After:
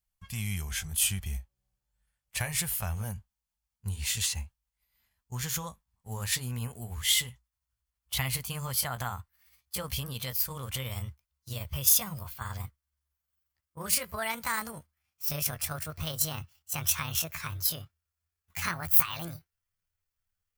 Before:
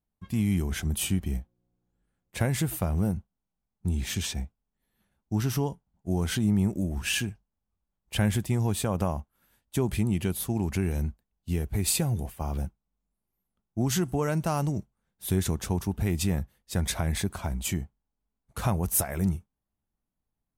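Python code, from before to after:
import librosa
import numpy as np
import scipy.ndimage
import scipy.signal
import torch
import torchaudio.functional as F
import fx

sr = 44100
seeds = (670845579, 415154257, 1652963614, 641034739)

y = fx.pitch_glide(x, sr, semitones=10.0, runs='starting unshifted')
y = fx.tone_stack(y, sr, knobs='10-0-10')
y = fx.notch(y, sr, hz=3800.0, q=14.0)
y = F.gain(torch.from_numpy(y), 7.0).numpy()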